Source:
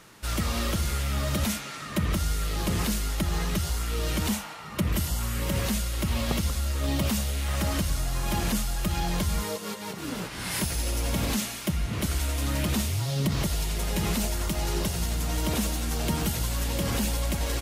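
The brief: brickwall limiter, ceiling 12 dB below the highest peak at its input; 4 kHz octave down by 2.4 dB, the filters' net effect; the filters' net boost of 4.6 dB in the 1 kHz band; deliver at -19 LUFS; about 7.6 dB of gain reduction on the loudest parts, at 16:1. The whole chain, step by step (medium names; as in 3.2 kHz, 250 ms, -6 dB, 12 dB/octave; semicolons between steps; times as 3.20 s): peaking EQ 1 kHz +6 dB; peaking EQ 4 kHz -3.5 dB; compression 16:1, threshold -29 dBFS; trim +19 dB; peak limiter -10.5 dBFS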